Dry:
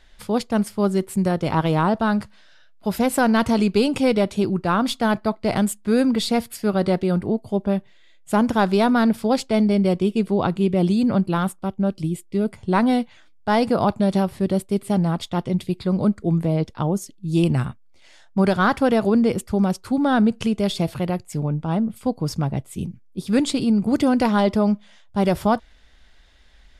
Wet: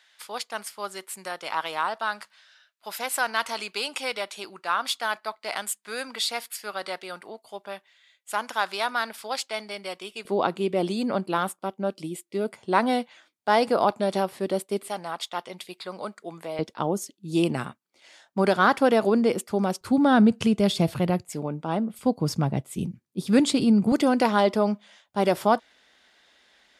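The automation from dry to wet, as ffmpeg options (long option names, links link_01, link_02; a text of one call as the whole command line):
ffmpeg -i in.wav -af "asetnsamples=nb_out_samples=441:pad=0,asendcmd='10.25 highpass f 380;14.88 highpass f 800;16.59 highpass f 290;19.81 highpass f 82;21.29 highpass f 280;21.99 highpass f 130;23.92 highpass f 300',highpass=1100" out.wav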